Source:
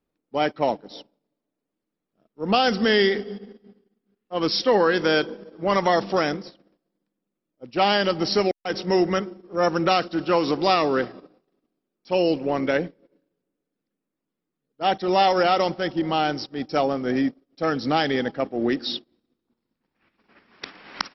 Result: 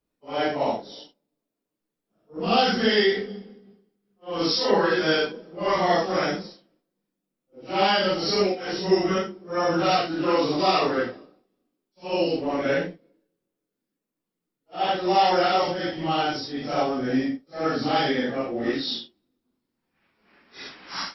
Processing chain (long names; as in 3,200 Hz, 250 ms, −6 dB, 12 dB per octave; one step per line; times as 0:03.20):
random phases in long frames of 200 ms
high-shelf EQ 5,300 Hz +5.5 dB
level −1.5 dB